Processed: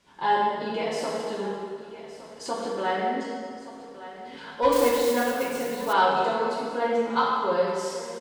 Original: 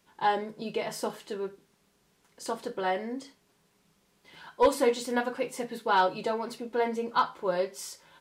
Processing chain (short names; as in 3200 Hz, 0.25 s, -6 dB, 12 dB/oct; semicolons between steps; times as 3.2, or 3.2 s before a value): LPF 7400 Hz 12 dB/oct; echo 1.166 s -18.5 dB; plate-style reverb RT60 1.8 s, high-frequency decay 0.8×, DRR -4.5 dB; in parallel at -1.5 dB: compressor, threshold -39 dBFS, peak gain reduction 23.5 dB; 4.72–5.93 on the sum: modulation noise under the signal 15 dB; gain -2.5 dB